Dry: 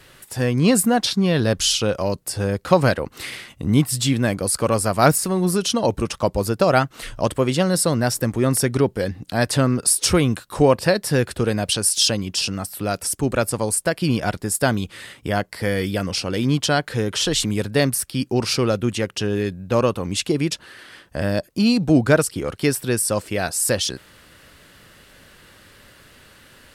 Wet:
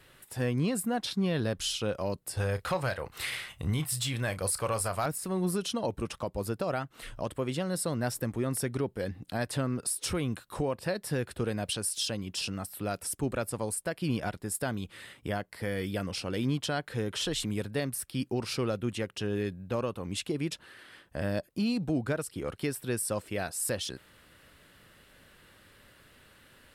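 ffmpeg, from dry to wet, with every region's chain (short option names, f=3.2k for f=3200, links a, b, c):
-filter_complex "[0:a]asettb=1/sr,asplit=3[a][b][c];[a]atrim=end=2.374[d];[b]atrim=start=2.37:end=5.06,asetpts=PTS-STARTPTS,afade=t=in:d=0.004:c=qsin,afade=t=out:st=2.686:d=0.004:c=qsin,equalizer=f=260:t=o:w=1.5:g=-13,acontrast=89,asplit=2[e][f];[f]adelay=32,volume=-13dB[g];[e][g]amix=inputs=2:normalize=0,atrim=end_sample=118629[h];[c]atrim=start=5.056[i];[d][h]acrossfade=d=0.004:c1=hsin:c2=qsin[j];[j][i]acrossfade=d=0.004:c1=qsin:c2=hsin,equalizer=f=6.1k:t=o:w=0.62:g=-5,bandreject=f=4.6k:w=24,alimiter=limit=-12dB:level=0:latency=1:release=324,volume=-9dB"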